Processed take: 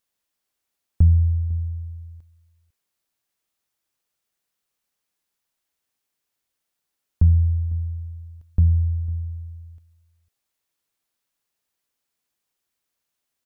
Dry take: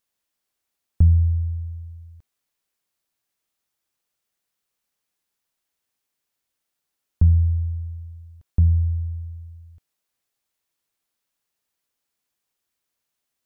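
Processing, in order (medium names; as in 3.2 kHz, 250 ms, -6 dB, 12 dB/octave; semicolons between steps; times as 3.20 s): echo from a far wall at 86 m, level -20 dB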